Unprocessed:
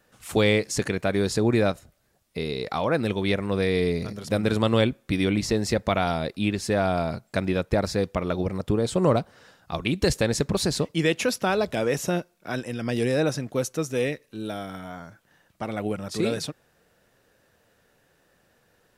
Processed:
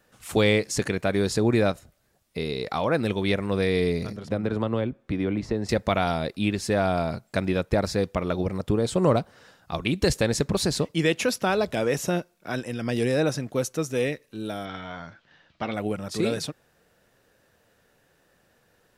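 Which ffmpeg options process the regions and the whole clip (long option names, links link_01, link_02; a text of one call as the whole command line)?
ffmpeg -i in.wav -filter_complex "[0:a]asettb=1/sr,asplit=3[link_01][link_02][link_03];[link_01]atrim=end=4.164[link_04];[link_02]atrim=start=4.16:end=5.69,asetpts=PTS-STARTPTS,afade=type=in:duration=0.004:curve=qsin,afade=type=out:start_time=1.526:duration=0.004:curve=qsin,aemphasis=mode=reproduction:type=75kf,acrossover=split=300|1800[link_05][link_06][link_07];[link_05]acompressor=threshold=-27dB:ratio=4[link_08];[link_06]acompressor=threshold=-26dB:ratio=4[link_09];[link_07]acompressor=threshold=-46dB:ratio=4[link_10];[link_08][link_09][link_10]amix=inputs=3:normalize=0[link_11];[link_03]atrim=start=5.686[link_12];[link_04][link_11]acrossfade=duration=0.004:curve1=hsin:curve2=qsin[link_13];[link_13][link_12]acrossfade=duration=0.004:curve1=qsin:curve2=hsin,asettb=1/sr,asplit=3[link_14][link_15][link_16];[link_14]atrim=end=14.654[link_17];[link_15]atrim=start=14.65:end=15.74,asetpts=PTS-STARTPTS,afade=type=in:duration=0.004:curve=qsin,afade=type=out:start_time=1.086:duration=0.004:curve=qsin,lowpass=frequency=4200:width=0.5412,lowpass=frequency=4200:width=1.3066,highshelf=frequency=2500:gain=12,asplit=2[link_18][link_19];[link_19]adelay=13,volume=-11dB[link_20];[link_18][link_20]amix=inputs=2:normalize=0,atrim=end_sample=48069[link_21];[link_16]atrim=start=15.736[link_22];[link_17][link_21]acrossfade=duration=0.004:curve1=hsin:curve2=qsin[link_23];[link_23][link_22]acrossfade=duration=0.004:curve1=qsin:curve2=hsin" out.wav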